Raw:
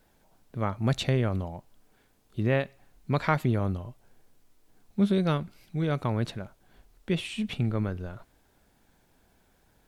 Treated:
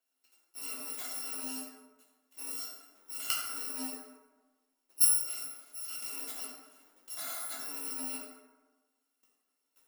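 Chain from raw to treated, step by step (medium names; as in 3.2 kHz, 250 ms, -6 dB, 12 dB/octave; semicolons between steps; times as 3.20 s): bit-reversed sample order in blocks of 256 samples; elliptic high-pass 260 Hz, stop band 40 dB; level held to a coarse grid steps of 22 dB; plate-style reverb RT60 1.3 s, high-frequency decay 0.45×, DRR -6 dB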